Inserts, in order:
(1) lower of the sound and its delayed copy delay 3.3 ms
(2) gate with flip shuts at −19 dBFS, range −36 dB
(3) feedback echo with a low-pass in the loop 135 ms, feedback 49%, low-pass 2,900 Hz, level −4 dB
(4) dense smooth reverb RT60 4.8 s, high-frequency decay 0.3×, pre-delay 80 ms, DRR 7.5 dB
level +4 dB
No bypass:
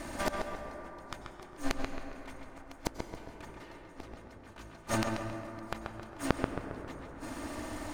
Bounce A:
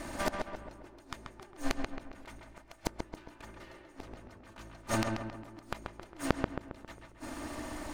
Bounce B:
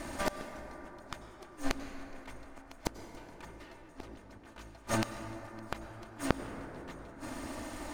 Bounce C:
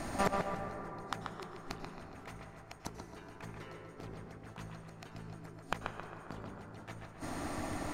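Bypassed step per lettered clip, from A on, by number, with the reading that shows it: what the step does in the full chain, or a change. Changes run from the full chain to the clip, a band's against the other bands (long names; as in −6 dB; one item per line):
4, echo-to-direct ratio −2.0 dB to −4.0 dB
3, echo-to-direct ratio −2.0 dB to −7.5 dB
1, change in momentary loudness spread −5 LU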